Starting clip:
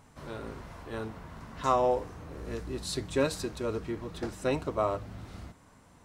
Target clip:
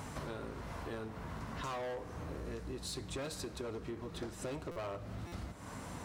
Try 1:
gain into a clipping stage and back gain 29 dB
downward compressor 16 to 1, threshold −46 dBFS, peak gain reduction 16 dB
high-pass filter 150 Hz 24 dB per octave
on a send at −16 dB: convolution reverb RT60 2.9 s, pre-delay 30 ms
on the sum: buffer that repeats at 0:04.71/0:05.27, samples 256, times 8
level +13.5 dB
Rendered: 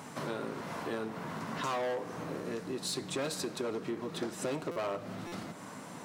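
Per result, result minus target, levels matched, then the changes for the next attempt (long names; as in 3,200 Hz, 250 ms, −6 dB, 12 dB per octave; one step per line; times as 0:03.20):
downward compressor: peak gain reduction −6.5 dB; 125 Hz band −6.0 dB
change: downward compressor 16 to 1, threshold −53 dBFS, peak gain reduction 22.5 dB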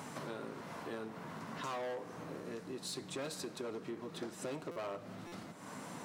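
125 Hz band −6.0 dB
change: high-pass filter 38 Hz 24 dB per octave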